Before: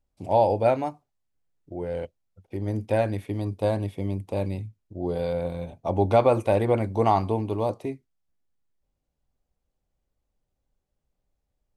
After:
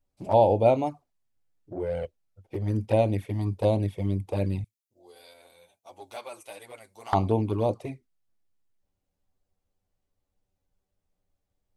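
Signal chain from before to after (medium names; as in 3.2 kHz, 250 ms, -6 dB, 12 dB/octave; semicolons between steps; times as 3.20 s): 4.64–7.13 s: differentiator; touch-sensitive flanger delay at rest 10.6 ms, full sweep at -21 dBFS; trim +2.5 dB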